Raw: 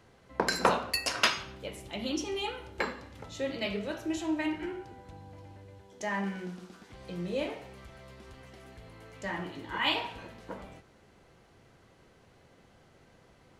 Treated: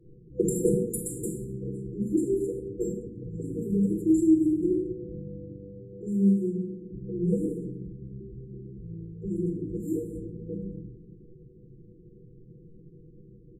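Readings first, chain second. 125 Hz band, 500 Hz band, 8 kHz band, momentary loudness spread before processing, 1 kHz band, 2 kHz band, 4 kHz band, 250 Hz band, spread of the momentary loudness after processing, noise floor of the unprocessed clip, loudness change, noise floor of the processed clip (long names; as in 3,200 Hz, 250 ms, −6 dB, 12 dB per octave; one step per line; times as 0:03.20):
+12.0 dB, +6.0 dB, can't be measured, 23 LU, below −40 dB, below −40 dB, below −40 dB, +11.5 dB, 19 LU, −61 dBFS, +4.5 dB, −52 dBFS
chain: rectangular room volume 2,000 cubic metres, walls furnished, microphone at 4 metres
low-pass that shuts in the quiet parts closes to 450 Hz, open at −27 dBFS
comb filter 5.8 ms, depth 83%
brick-wall band-stop 500–7,100 Hz
level +2.5 dB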